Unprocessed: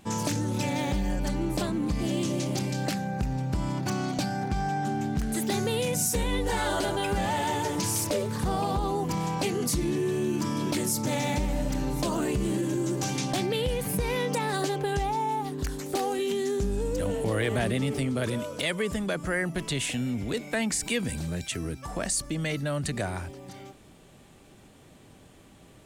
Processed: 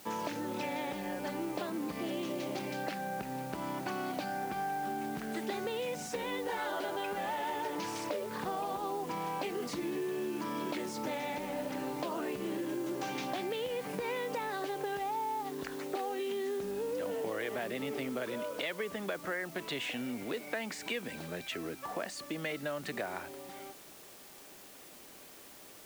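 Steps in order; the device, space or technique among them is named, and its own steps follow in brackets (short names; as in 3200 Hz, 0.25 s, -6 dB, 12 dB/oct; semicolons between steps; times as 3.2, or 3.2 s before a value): baby monitor (BPF 350–3000 Hz; compressor, threshold -33 dBFS, peak gain reduction 8 dB; white noise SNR 17 dB)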